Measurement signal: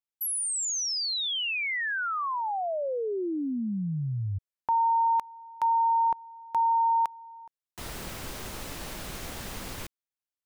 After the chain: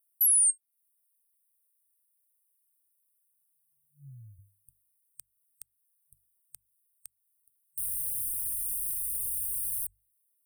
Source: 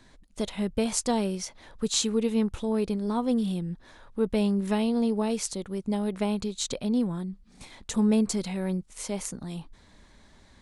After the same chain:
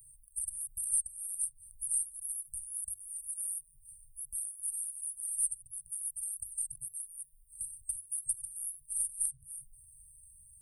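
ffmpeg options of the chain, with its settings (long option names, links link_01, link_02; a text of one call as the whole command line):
ffmpeg -i in.wav -filter_complex "[0:a]acrossover=split=240|2100[link_01][link_02][link_03];[link_01]acompressor=threshold=-41dB:ratio=16:attack=2.4:release=25:knee=6:detection=peak[link_04];[link_04][link_02][link_03]amix=inputs=3:normalize=0,tiltshelf=frequency=1100:gain=-7.5,afftfilt=real='re*(1-between(b*sr/4096,140,8500))':imag='im*(1-between(b*sr/4096,140,8500))':win_size=4096:overlap=0.75,highshelf=frequency=8000:gain=-9.5,bandreject=frequency=50:width_type=h:width=6,bandreject=frequency=100:width_type=h:width=6,bandreject=frequency=150:width_type=h:width=6,crystalizer=i=7.5:c=0,acrossover=split=480[link_05][link_06];[link_06]acompressor=threshold=-28dB:ratio=2.5:attack=0.17:release=479:knee=2.83:detection=peak[link_07];[link_05][link_07]amix=inputs=2:normalize=0" out.wav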